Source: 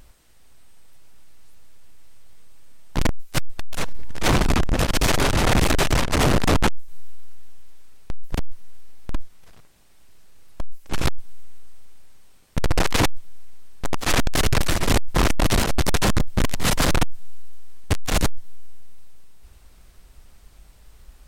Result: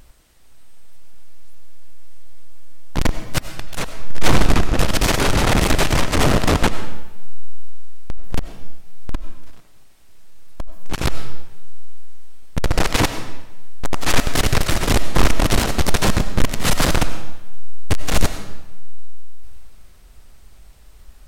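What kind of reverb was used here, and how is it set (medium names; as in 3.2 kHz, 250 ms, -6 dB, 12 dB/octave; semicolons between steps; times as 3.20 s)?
algorithmic reverb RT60 1 s, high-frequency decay 0.9×, pre-delay 55 ms, DRR 9.5 dB; trim +2 dB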